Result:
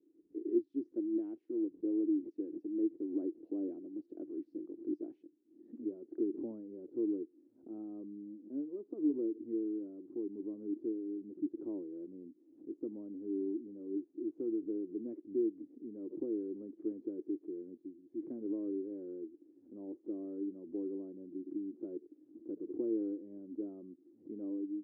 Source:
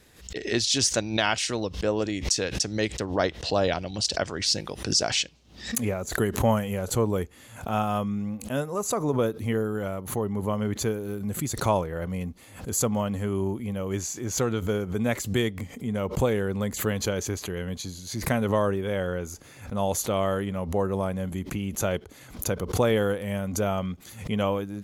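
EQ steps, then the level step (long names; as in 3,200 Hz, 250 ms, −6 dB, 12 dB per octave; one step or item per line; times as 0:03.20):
flat-topped band-pass 320 Hz, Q 4.6
+1.0 dB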